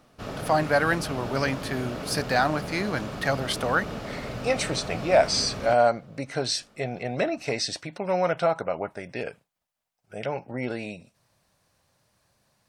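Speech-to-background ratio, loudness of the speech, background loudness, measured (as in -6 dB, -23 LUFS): 9.0 dB, -26.5 LUFS, -35.5 LUFS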